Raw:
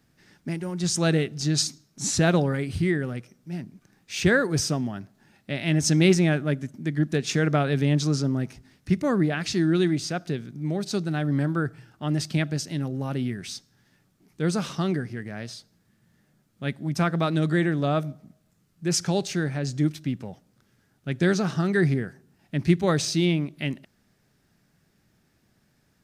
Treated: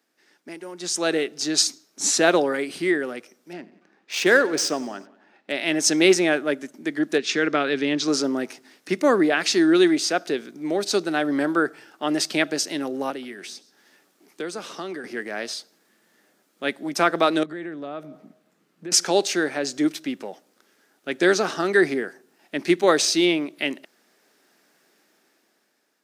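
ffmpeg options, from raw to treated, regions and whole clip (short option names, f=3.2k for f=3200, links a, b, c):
-filter_complex "[0:a]asettb=1/sr,asplit=3[a][b][c];[a]atrim=end=3.534[d];[b]atrim=start=3.53:end=5.52,asetpts=PTS-STARTPTS,afade=t=in:d=0.004:c=qsin,afade=t=out:st=1.986:d=0.004:c=qsin,adynamicsmooth=sensitivity=8:basefreq=3.1k,aecho=1:1:93|186|279|372:0.106|0.0583|0.032|0.0176,atrim=end_sample=87759[e];[c]atrim=start=5.516[f];[d][e]acrossfade=d=0.004:c1=hsin:c2=qsin[g];[g][f]acrossfade=d=0.004:c1=qsin:c2=hsin,asettb=1/sr,asplit=3[h][i][j];[h]atrim=end=7.184[k];[i]atrim=start=7.18:end=8.08,asetpts=PTS-STARTPTS,afade=t=in:d=0.004:c=qsin,afade=t=out:st=0.896:d=0.004:c=qsin,lowpass=4.9k,equalizer=f=700:t=o:w=1.3:g=-8[l];[j]atrim=start=8.076[m];[k][l]acrossfade=d=0.004:c1=hsin:c2=qsin[n];[n][m]acrossfade=d=0.004:c1=qsin:c2=hsin,asettb=1/sr,asplit=3[o][p][q];[o]atrim=end=13.104[r];[p]atrim=start=13.1:end=15.04,asetpts=PTS-STARTPTS,afade=t=in:d=0.004:c=qsin,afade=t=out:st=1.936:d=0.004:c=qsin,acrossover=split=120|810[s][t][u];[s]acompressor=threshold=-46dB:ratio=4[v];[t]acompressor=threshold=-37dB:ratio=4[w];[u]acompressor=threshold=-47dB:ratio=4[x];[v][w][x]amix=inputs=3:normalize=0,aecho=1:1:128:0.0891,atrim=end_sample=85554[y];[q]atrim=start=15.036[z];[r][y]acrossfade=d=0.004:c1=hsin:c2=qsin[aa];[aa][z]acrossfade=d=0.004:c1=qsin:c2=hsin,asettb=1/sr,asplit=3[ab][ac][ad];[ab]atrim=end=17.434[ae];[ac]atrim=start=17.43:end=18.92,asetpts=PTS-STARTPTS,afade=t=in:d=0.004:c=qsin,afade=t=out:st=1.486:d=0.004:c=qsin,acompressor=threshold=-35dB:ratio=12:attack=3.2:release=140:knee=1:detection=peak,bass=f=250:g=10,treble=f=4k:g=-9[af];[ad]atrim=start=18.916[ag];[ae][af]acrossfade=d=0.004:c1=hsin:c2=qsin[ah];[ah][ag]acrossfade=d=0.004:c1=qsin:c2=hsin,highpass=f=310:w=0.5412,highpass=f=310:w=1.3066,dynaudnorm=f=250:g=9:m=11.5dB,volume=-2.5dB"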